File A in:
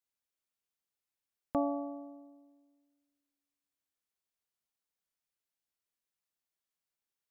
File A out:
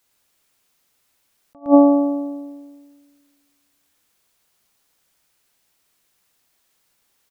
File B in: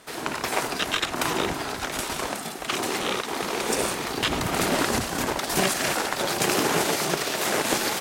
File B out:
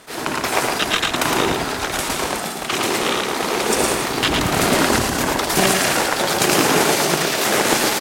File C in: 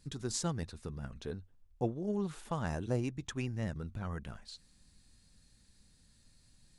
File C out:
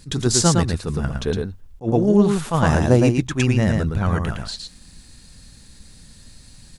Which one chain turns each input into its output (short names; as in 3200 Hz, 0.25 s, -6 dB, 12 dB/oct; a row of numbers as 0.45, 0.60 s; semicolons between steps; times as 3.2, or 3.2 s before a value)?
on a send: echo 0.112 s -4 dB; on the sum: attack slew limiter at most 290 dB/s; normalise peaks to -1.5 dBFS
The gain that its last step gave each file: +22.5, +6.0, +18.0 dB